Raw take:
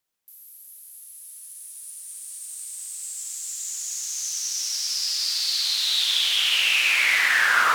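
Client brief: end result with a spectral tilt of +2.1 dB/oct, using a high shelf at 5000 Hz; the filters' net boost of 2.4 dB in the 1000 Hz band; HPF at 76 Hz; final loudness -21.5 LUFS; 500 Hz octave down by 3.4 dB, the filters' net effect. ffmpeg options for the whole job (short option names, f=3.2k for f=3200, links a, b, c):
-af "highpass=76,equalizer=f=500:t=o:g=-6.5,equalizer=f=1k:t=o:g=4,highshelf=f=5k:g=7.5,volume=-2.5dB"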